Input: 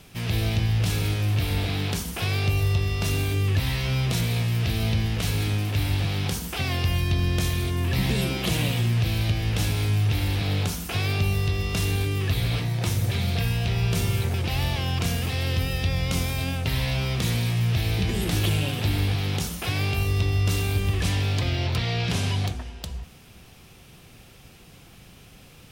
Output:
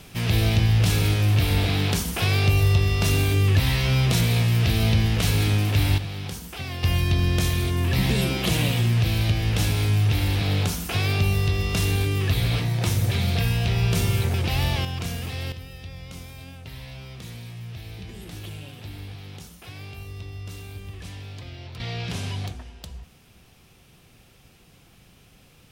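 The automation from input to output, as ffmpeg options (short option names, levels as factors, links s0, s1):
-af "asetnsamples=n=441:p=0,asendcmd='5.98 volume volume -6dB;6.83 volume volume 2dB;14.85 volume volume -4.5dB;15.52 volume volume -14dB;21.8 volume volume -5dB',volume=1.58"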